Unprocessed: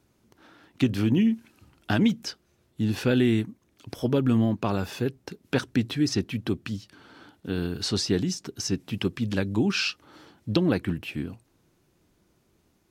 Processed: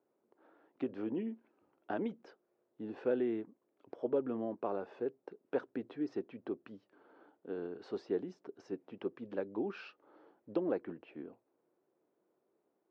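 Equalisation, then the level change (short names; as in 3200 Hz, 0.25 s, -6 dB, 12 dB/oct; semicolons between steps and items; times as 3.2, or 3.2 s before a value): ladder band-pass 580 Hz, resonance 30%; +3.5 dB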